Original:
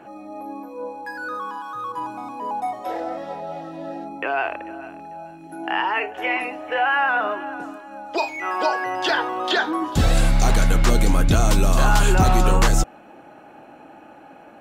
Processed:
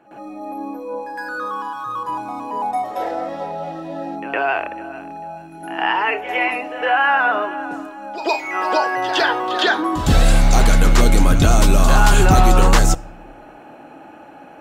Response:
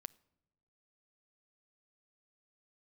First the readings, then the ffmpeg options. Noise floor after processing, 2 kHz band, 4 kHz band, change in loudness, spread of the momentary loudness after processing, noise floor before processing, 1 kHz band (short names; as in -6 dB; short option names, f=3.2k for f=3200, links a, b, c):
-41 dBFS, +4.0 dB, +4.0 dB, +4.0 dB, 16 LU, -45 dBFS, +4.0 dB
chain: -filter_complex "[0:a]asplit=2[a][b];[1:a]atrim=start_sample=2205,adelay=111[c];[b][c]afir=irnorm=-1:irlink=0,volume=18dB[d];[a][d]amix=inputs=2:normalize=0,volume=-9dB"